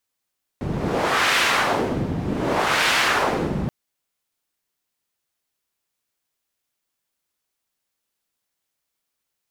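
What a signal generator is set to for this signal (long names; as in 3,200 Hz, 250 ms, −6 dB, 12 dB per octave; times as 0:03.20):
wind from filtered noise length 3.08 s, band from 170 Hz, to 2,100 Hz, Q 1, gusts 2, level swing 6.5 dB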